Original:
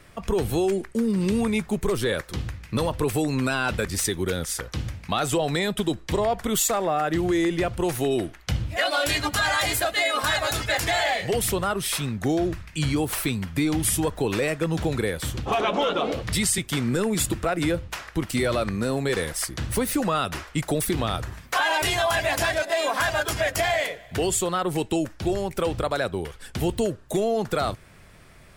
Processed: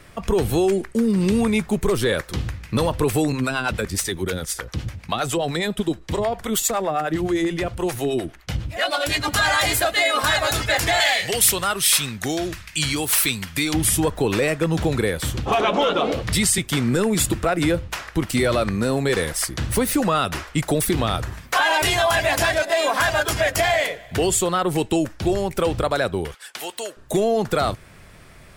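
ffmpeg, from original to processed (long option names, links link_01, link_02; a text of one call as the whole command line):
ffmpeg -i in.wav -filter_complex "[0:a]asettb=1/sr,asplit=3[link_01][link_02][link_03];[link_01]atrim=end=3.324[link_04];[link_02]atrim=start=3.32:end=9.28,asetpts=PTS-STARTPTS,afade=type=in:duration=0.004:curve=qsin,afade=type=out:start_time=5.956:duration=0.004:curve=qsin,acrossover=split=490[link_05][link_06];[link_05]aeval=exprs='val(0)*(1-0.7/2+0.7/2*cos(2*PI*9.7*n/s))':channel_layout=same[link_07];[link_06]aeval=exprs='val(0)*(1-0.7/2-0.7/2*cos(2*PI*9.7*n/s))':channel_layout=same[link_08];[link_07][link_08]amix=inputs=2:normalize=0[link_09];[link_03]atrim=start=9.276[link_10];[link_04][link_09]acrossfade=duration=0.004:curve1=hsin:curve2=qsin[link_11];[link_11][link_10]acrossfade=duration=0.004:curve1=qsin:curve2=hsin,asettb=1/sr,asplit=3[link_12][link_13][link_14];[link_12]atrim=end=11.004[link_15];[link_13]atrim=start=11:end=13.74,asetpts=PTS-STARTPTS,afade=type=in:duration=0.004:curve=qsin,afade=type=out:start_time=2.736:duration=0.004:curve=qsin,tiltshelf=frequency=1300:gain=-7.5[link_16];[link_14]atrim=start=13.736[link_17];[link_15][link_16]acrossfade=duration=0.004:curve1=hsin:curve2=qsin[link_18];[link_18][link_17]acrossfade=duration=0.004:curve1=qsin:curve2=hsin,asettb=1/sr,asplit=3[link_19][link_20][link_21];[link_19]atrim=end=26.344[link_22];[link_20]atrim=start=26.34:end=26.97,asetpts=PTS-STARTPTS,afade=type=in:duration=0.004:curve=qsin,afade=type=out:start_time=0.626:duration=0.004:curve=qsin,highpass=890[link_23];[link_21]atrim=start=26.966[link_24];[link_22][link_23]acrossfade=duration=0.004:curve1=hsin:curve2=qsin[link_25];[link_25][link_24]acrossfade=duration=0.004:curve1=qsin:curve2=hsin,acontrast=45,volume=-1.5dB" out.wav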